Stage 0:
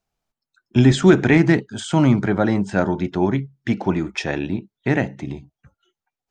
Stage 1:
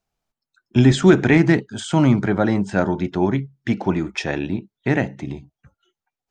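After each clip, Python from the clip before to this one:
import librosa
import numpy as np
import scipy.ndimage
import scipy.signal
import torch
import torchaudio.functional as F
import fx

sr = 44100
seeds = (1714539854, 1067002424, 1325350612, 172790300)

y = x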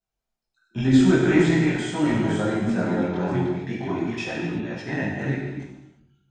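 y = fx.reverse_delay(x, sr, ms=300, wet_db=-3.0)
y = fx.chorus_voices(y, sr, voices=2, hz=0.44, base_ms=20, depth_ms=3.1, mix_pct=55)
y = fx.rev_gated(y, sr, seeds[0], gate_ms=380, shape='falling', drr_db=-2.5)
y = F.gain(torch.from_numpy(y), -7.0).numpy()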